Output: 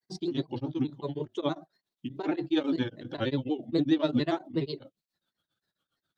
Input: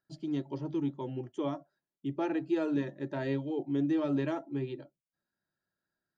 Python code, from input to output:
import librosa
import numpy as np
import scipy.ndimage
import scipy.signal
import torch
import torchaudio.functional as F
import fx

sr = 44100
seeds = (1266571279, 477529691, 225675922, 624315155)

y = fx.peak_eq(x, sr, hz=3700.0, db=14.5, octaves=0.37)
y = fx.granulator(y, sr, seeds[0], grain_ms=100.0, per_s=17.0, spray_ms=12.0, spread_st=3)
y = y * np.abs(np.cos(np.pi * 7.4 * np.arange(len(y)) / sr))
y = y * librosa.db_to_amplitude(8.0)